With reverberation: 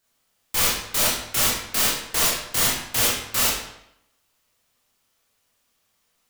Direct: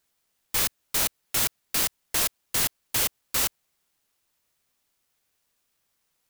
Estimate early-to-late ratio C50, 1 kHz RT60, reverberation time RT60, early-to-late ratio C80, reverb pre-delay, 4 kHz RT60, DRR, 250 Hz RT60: 1.0 dB, 0.75 s, 0.80 s, 5.0 dB, 20 ms, 0.65 s, -6.0 dB, 0.80 s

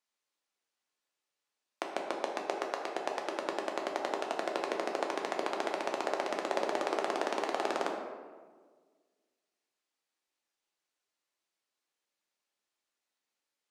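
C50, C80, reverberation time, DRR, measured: 4.0 dB, 6.0 dB, 1.5 s, 0.5 dB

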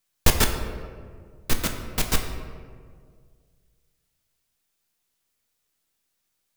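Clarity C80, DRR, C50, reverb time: 7.5 dB, 3.5 dB, 6.5 dB, 1.9 s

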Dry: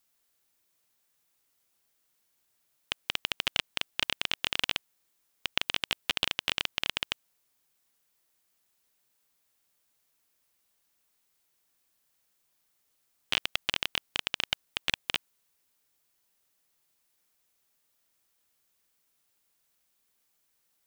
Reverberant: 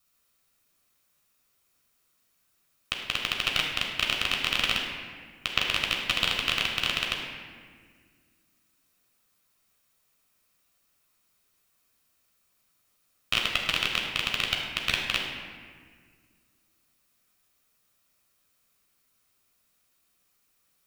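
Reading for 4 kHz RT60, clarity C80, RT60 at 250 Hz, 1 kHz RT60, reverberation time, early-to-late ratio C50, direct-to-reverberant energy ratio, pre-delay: 1.2 s, 4.0 dB, 2.6 s, 1.6 s, 1.8 s, 2.5 dB, 0.0 dB, 11 ms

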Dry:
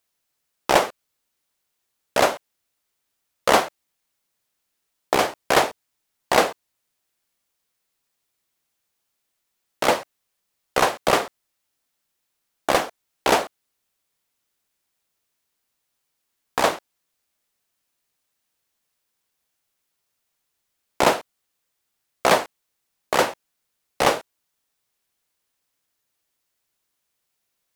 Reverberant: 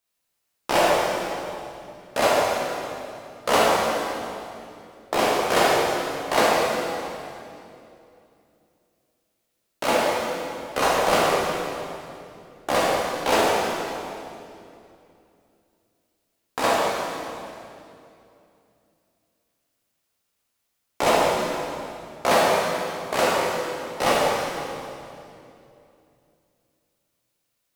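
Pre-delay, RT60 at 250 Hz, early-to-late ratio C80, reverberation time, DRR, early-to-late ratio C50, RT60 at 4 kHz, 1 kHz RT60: 9 ms, 3.2 s, -1.5 dB, 2.7 s, -7.0 dB, -3.5 dB, 2.3 s, 2.5 s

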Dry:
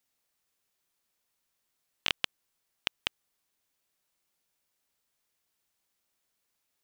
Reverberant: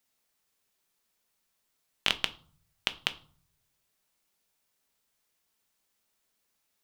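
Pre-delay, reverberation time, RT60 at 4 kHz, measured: 5 ms, 0.45 s, 0.35 s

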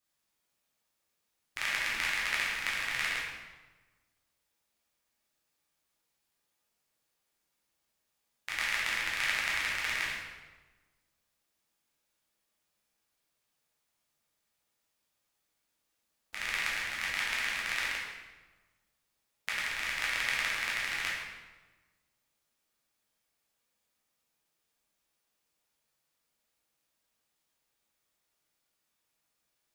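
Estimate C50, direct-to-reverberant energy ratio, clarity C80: 0.0 dB, -6.5 dB, 3.5 dB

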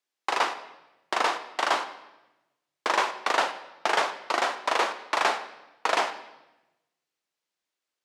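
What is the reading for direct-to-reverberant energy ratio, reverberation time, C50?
10.0 dB, 1.0 s, 12.0 dB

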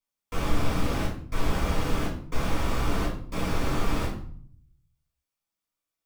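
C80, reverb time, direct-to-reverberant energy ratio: 10.5 dB, 0.55 s, -4.5 dB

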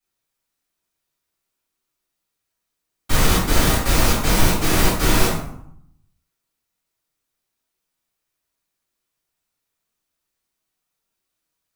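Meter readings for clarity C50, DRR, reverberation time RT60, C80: 2.5 dB, -13.0 dB, 0.75 s, 6.0 dB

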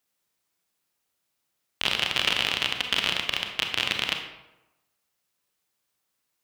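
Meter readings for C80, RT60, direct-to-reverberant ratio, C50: 8.0 dB, 1.0 s, 3.5 dB, 5.5 dB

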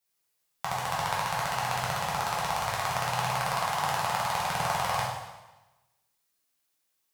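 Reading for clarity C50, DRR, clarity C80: 0.5 dB, -6.5 dB, 3.5 dB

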